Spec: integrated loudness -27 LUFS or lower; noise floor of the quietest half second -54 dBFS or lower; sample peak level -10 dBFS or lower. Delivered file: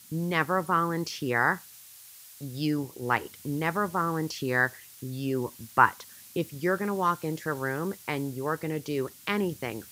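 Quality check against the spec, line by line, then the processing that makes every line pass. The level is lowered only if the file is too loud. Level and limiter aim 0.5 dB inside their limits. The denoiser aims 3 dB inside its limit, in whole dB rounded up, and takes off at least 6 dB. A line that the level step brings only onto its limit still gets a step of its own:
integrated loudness -29.0 LUFS: pass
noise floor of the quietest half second -50 dBFS: fail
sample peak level -5.5 dBFS: fail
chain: noise reduction 7 dB, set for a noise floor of -50 dBFS; peak limiter -10.5 dBFS

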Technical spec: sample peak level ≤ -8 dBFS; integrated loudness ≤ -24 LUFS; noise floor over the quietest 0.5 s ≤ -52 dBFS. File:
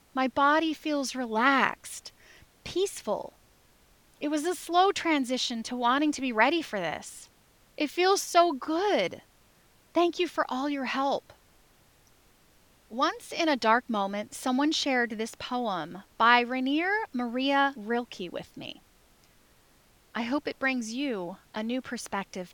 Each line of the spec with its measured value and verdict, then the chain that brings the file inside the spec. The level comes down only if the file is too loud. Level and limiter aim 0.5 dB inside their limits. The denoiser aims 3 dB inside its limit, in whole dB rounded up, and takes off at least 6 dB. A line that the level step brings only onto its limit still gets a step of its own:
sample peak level -6.0 dBFS: fail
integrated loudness -28.0 LUFS: pass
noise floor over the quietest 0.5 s -62 dBFS: pass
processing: peak limiter -8.5 dBFS

